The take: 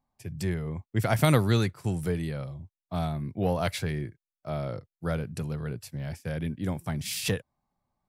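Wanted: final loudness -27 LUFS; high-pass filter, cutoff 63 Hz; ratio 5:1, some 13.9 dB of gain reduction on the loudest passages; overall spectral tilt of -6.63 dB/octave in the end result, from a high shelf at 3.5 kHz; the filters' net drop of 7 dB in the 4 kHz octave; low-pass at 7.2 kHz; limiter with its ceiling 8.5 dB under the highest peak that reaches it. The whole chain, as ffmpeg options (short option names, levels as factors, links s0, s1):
-af "highpass=63,lowpass=7200,highshelf=f=3500:g=-7.5,equalizer=f=4000:t=o:g=-3.5,acompressor=threshold=0.0224:ratio=5,volume=4.22,alimiter=limit=0.158:level=0:latency=1"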